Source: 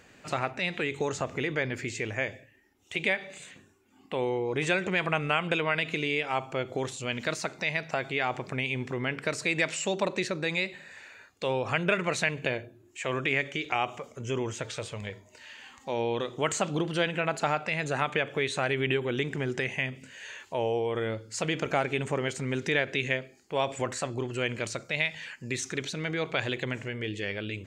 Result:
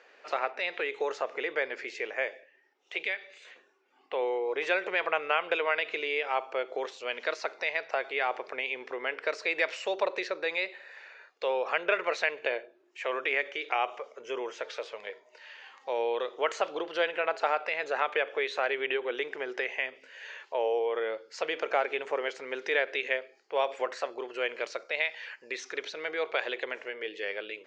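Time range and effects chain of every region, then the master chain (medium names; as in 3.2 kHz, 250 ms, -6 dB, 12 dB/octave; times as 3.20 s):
3.03–3.45 s: high-pass 160 Hz + peaking EQ 730 Hz -12 dB 2 oct
whole clip: Chebyshev band-pass 450–5500 Hz, order 3; treble shelf 3.7 kHz -8.5 dB; trim +1.5 dB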